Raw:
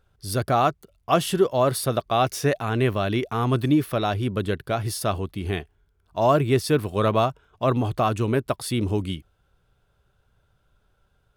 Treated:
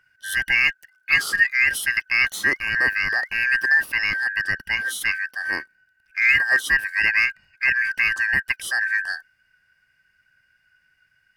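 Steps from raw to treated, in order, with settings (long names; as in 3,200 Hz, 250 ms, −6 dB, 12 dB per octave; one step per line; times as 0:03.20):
band-splitting scrambler in four parts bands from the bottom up 2143
level +1 dB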